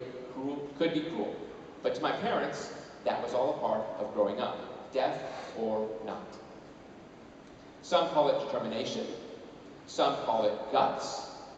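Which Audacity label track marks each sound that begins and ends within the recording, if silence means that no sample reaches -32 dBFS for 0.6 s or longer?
7.920000	9.140000	sound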